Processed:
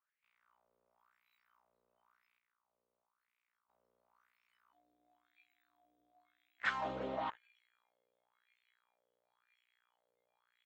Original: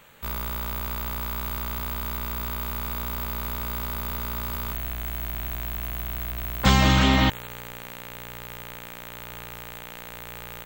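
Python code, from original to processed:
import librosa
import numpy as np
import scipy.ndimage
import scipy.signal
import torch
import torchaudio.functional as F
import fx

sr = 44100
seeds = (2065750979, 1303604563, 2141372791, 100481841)

y = fx.noise_reduce_blind(x, sr, reduce_db=26)
y = fx.hpss(y, sr, part='harmonic', gain_db=-9)
y = fx.wah_lfo(y, sr, hz=0.96, low_hz=490.0, high_hz=2400.0, q=4.5)
y = fx.level_steps(y, sr, step_db=22, at=(2.38, 3.69))
y = F.gain(torch.from_numpy(y), -1.0).numpy()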